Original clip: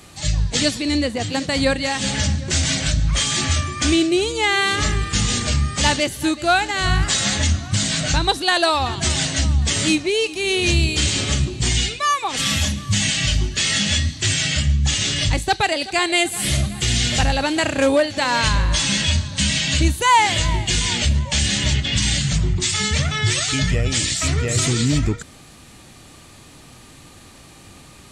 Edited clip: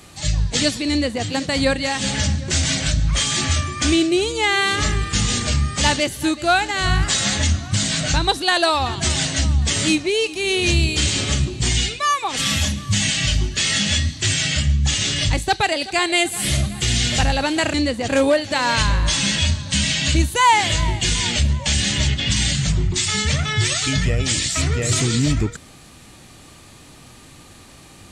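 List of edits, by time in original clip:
0:00.90–0:01.24: duplicate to 0:17.74

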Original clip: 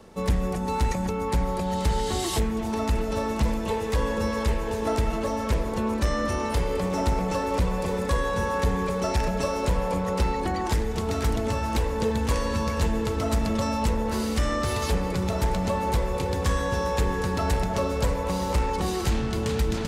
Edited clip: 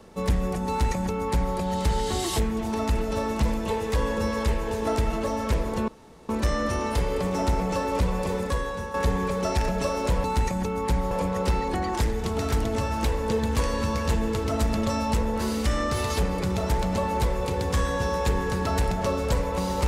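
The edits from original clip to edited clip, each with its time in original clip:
0:00.68–0:01.55: duplicate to 0:09.83
0:05.88: splice in room tone 0.41 s
0:07.91–0:08.53: fade out, to −9.5 dB

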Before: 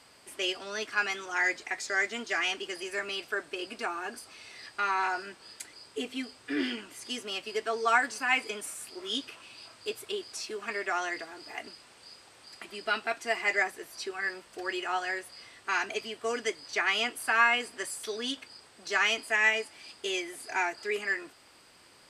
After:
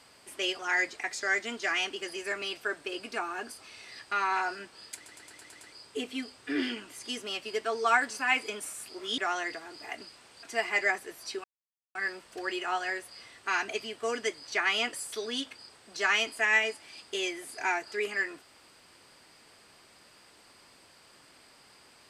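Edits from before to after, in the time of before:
0:00.59–0:01.26: remove
0:05.62: stutter 0.11 s, 7 plays
0:09.19–0:10.84: remove
0:12.09–0:13.15: remove
0:14.16: splice in silence 0.51 s
0:17.14–0:17.84: remove

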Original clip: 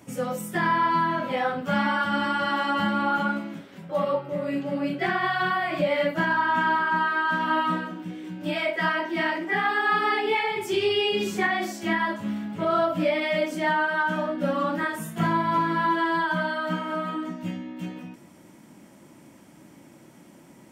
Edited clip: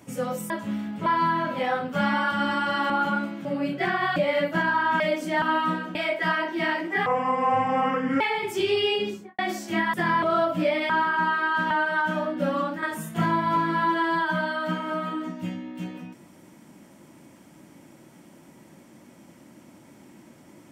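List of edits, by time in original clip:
0:00.50–0:00.79: swap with 0:12.07–0:12.63
0:02.63–0:03.03: remove
0:03.58–0:04.66: remove
0:05.37–0:05.79: remove
0:06.63–0:07.44: swap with 0:13.30–0:13.72
0:07.97–0:08.52: remove
0:09.63–0:10.34: play speed 62%
0:11.03–0:11.52: fade out and dull
0:14.59–0:14.84: fade out, to −8 dB

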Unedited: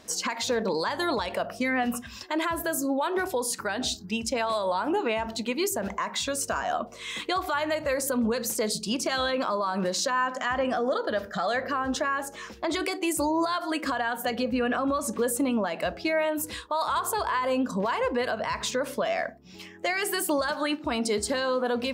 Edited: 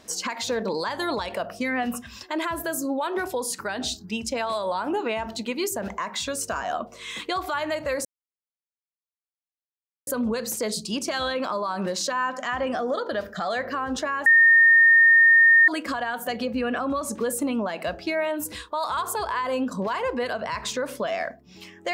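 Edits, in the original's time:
0:08.05: splice in silence 2.02 s
0:12.24–0:13.66: beep over 1,830 Hz −11.5 dBFS

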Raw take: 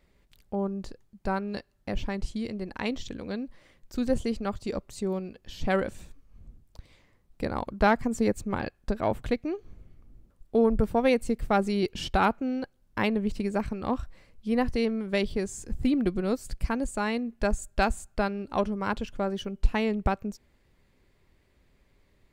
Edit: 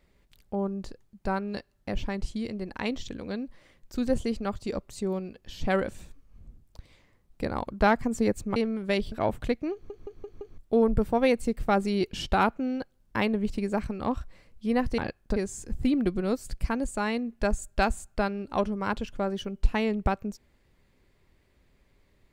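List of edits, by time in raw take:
0:08.56–0:08.94: swap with 0:14.80–0:15.36
0:09.55: stutter in place 0.17 s, 5 plays

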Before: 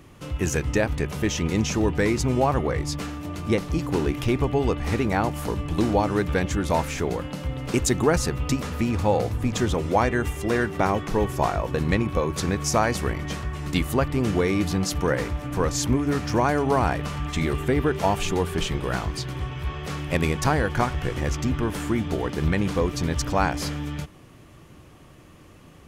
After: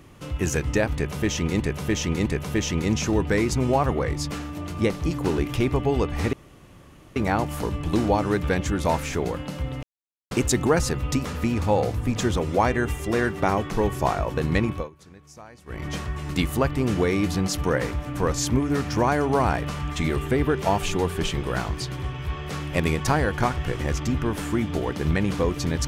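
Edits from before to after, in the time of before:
0:00.94–0:01.60: repeat, 3 plays
0:05.01: splice in room tone 0.83 s
0:07.68: splice in silence 0.48 s
0:12.06–0:13.24: duck −23.5 dB, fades 0.21 s

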